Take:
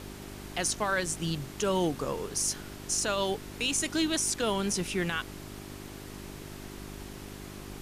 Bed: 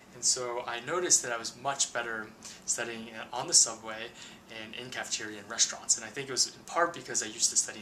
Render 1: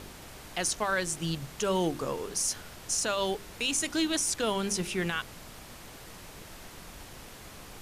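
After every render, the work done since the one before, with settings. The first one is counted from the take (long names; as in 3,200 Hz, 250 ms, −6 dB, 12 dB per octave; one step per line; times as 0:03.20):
hum removal 50 Hz, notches 8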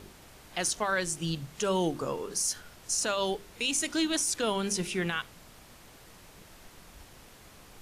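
noise reduction from a noise print 6 dB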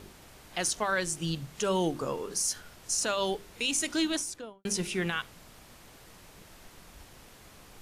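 0:04.04–0:04.65: fade out and dull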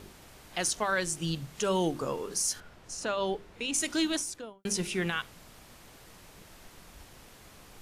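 0:02.60–0:03.74: low-pass filter 2,000 Hz 6 dB per octave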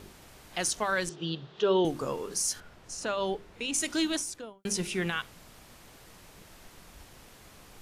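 0:01.09–0:01.85: loudspeaker in its box 170–4,000 Hz, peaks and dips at 260 Hz −8 dB, 390 Hz +9 dB, 2,200 Hz −9 dB, 3,500 Hz +6 dB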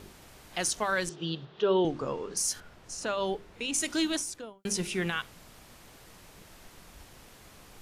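0:01.45–0:02.37: high-frequency loss of the air 120 metres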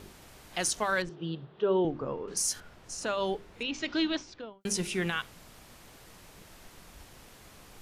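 0:01.02–0:02.28: head-to-tape spacing loss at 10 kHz 28 dB
0:03.63–0:04.61: inverse Chebyshev low-pass filter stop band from 10,000 Hz, stop band 50 dB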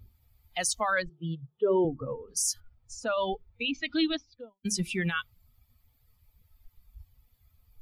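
spectral dynamics exaggerated over time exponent 2
in parallel at +2.5 dB: brickwall limiter −29.5 dBFS, peak gain reduction 10 dB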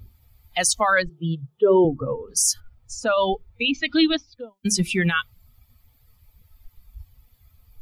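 level +8.5 dB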